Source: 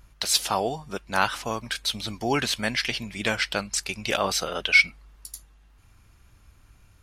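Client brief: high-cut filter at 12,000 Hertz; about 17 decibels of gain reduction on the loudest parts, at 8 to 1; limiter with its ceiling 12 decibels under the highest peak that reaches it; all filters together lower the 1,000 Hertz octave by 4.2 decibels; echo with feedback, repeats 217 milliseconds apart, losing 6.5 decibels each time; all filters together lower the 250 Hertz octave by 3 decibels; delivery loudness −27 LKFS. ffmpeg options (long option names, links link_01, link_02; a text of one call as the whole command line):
ffmpeg -i in.wav -af "lowpass=12000,equalizer=frequency=250:width_type=o:gain=-3.5,equalizer=frequency=1000:width_type=o:gain=-5.5,acompressor=threshold=-31dB:ratio=8,alimiter=level_in=1dB:limit=-24dB:level=0:latency=1,volume=-1dB,aecho=1:1:217|434|651|868|1085|1302:0.473|0.222|0.105|0.0491|0.0231|0.0109,volume=9.5dB" out.wav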